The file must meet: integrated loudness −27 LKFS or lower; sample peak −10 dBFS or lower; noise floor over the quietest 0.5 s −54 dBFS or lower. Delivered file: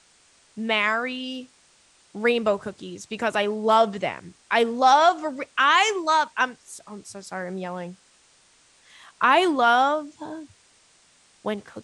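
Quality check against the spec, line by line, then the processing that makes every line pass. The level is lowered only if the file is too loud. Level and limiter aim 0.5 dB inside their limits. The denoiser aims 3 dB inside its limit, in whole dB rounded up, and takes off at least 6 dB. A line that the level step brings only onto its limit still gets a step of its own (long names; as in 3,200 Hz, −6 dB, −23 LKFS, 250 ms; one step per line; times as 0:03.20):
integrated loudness −22.0 LKFS: out of spec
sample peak −6.0 dBFS: out of spec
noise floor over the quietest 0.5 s −59 dBFS: in spec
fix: level −5.5 dB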